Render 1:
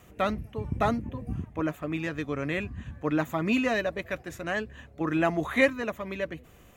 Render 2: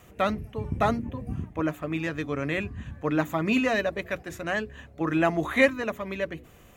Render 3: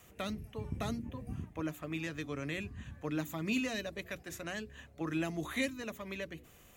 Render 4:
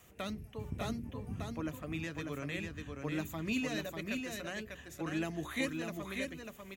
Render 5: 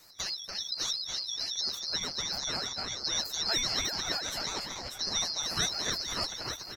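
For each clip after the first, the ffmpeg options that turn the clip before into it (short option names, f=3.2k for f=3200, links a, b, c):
-af "bandreject=f=60:t=h:w=6,bandreject=f=120:t=h:w=6,bandreject=f=180:t=h:w=6,bandreject=f=240:t=h:w=6,bandreject=f=300:t=h:w=6,bandreject=f=360:t=h:w=6,bandreject=f=420:t=h:w=6,volume=2dB"
-filter_complex "[0:a]highshelf=f=2.6k:g=8.5,acrossover=split=380|3000[a][b][c];[b]acompressor=threshold=-33dB:ratio=6[d];[a][d][c]amix=inputs=3:normalize=0,volume=-8.5dB"
-af "aecho=1:1:595:0.596,volume=-1.5dB"
-filter_complex "[0:a]afftfilt=real='real(if(lt(b,272),68*(eq(floor(b/68),0)*1+eq(floor(b/68),1)*2+eq(floor(b/68),2)*3+eq(floor(b/68),3)*0)+mod(b,68),b),0)':imag='imag(if(lt(b,272),68*(eq(floor(b/68),0)*1+eq(floor(b/68),1)*2+eq(floor(b/68),2)*3+eq(floor(b/68),3)*0)+mod(b,68),b),0)':win_size=2048:overlap=0.75,asplit=2[a][b];[b]adelay=289,lowpass=f=4.9k:p=1,volume=-3dB,asplit=2[c][d];[d]adelay=289,lowpass=f=4.9k:p=1,volume=0.45,asplit=2[e][f];[f]adelay=289,lowpass=f=4.9k:p=1,volume=0.45,asplit=2[g][h];[h]adelay=289,lowpass=f=4.9k:p=1,volume=0.45,asplit=2[i][j];[j]adelay=289,lowpass=f=4.9k:p=1,volume=0.45,asplit=2[k][l];[l]adelay=289,lowpass=f=4.9k:p=1,volume=0.45[m];[a][c][e][g][i][k][m]amix=inputs=7:normalize=0,aeval=exprs='val(0)*sin(2*PI*710*n/s+710*0.6/4.4*sin(2*PI*4.4*n/s))':c=same,volume=7dB"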